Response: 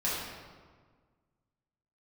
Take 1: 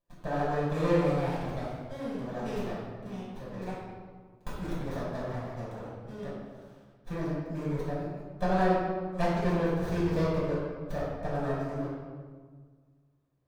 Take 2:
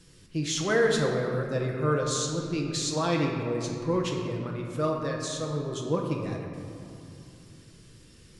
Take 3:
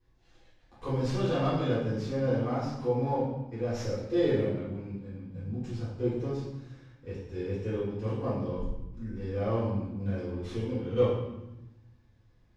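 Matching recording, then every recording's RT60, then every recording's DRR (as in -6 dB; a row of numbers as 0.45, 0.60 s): 1; 1.6, 2.8, 1.0 s; -8.5, 0.0, -13.0 dB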